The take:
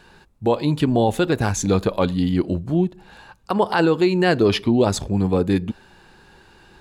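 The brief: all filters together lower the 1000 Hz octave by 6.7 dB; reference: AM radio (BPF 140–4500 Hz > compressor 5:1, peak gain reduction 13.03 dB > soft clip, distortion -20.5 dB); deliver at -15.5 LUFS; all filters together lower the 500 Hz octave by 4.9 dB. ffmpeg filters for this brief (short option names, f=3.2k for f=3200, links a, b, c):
-af "highpass=140,lowpass=4.5k,equalizer=f=500:t=o:g=-5,equalizer=f=1k:t=o:g=-7,acompressor=threshold=-30dB:ratio=5,asoftclip=threshold=-23dB,volume=19.5dB"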